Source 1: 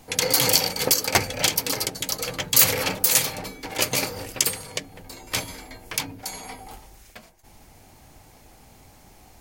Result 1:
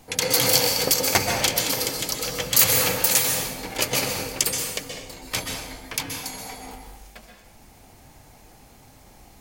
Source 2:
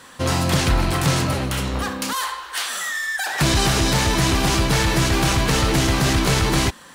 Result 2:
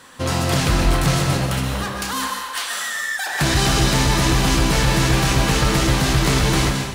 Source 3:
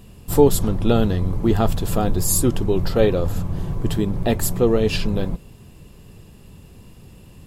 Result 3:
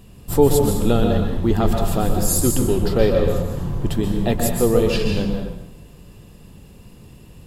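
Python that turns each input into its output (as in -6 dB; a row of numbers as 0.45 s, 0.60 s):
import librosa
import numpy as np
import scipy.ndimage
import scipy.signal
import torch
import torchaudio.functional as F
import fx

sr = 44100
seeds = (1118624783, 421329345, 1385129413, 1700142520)

y = fx.rev_plate(x, sr, seeds[0], rt60_s=0.9, hf_ratio=0.9, predelay_ms=115, drr_db=2.5)
y = y * 10.0 ** (-1.0 / 20.0)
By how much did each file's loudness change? +0.5 LU, +1.0 LU, +1.0 LU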